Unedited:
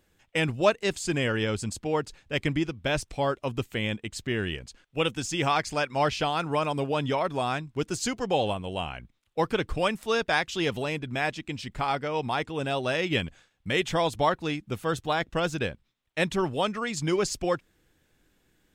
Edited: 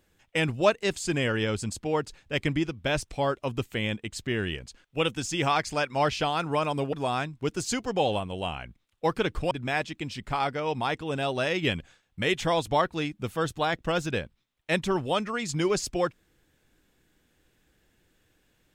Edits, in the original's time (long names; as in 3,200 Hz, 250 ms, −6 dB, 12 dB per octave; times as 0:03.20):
0:06.93–0:07.27: remove
0:09.85–0:10.99: remove